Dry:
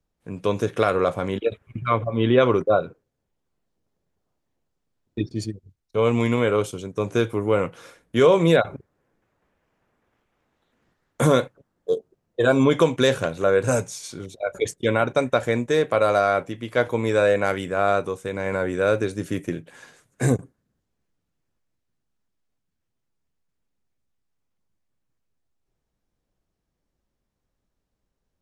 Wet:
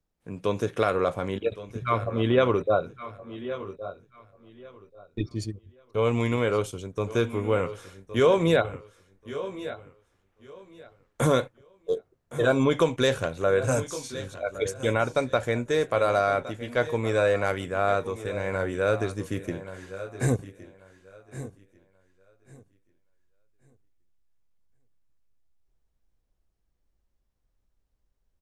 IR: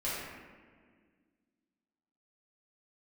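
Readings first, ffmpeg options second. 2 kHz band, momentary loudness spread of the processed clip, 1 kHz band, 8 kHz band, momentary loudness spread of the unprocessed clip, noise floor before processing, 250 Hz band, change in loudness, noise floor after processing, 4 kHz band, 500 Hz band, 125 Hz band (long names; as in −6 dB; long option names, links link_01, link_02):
−3.5 dB, 17 LU, −3.5 dB, −3.5 dB, 13 LU, −79 dBFS, −5.0 dB, −4.5 dB, −74 dBFS, −3.5 dB, −4.0 dB, −3.0 dB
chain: -filter_complex "[0:a]asplit=2[link_01][link_02];[link_02]aecho=0:1:1135|2270|3405:0.15|0.0389|0.0101[link_03];[link_01][link_03]amix=inputs=2:normalize=0,asubboost=boost=3:cutoff=86,asplit=2[link_04][link_05];[link_05]aecho=0:1:1114:0.158[link_06];[link_04][link_06]amix=inputs=2:normalize=0,volume=-3.5dB"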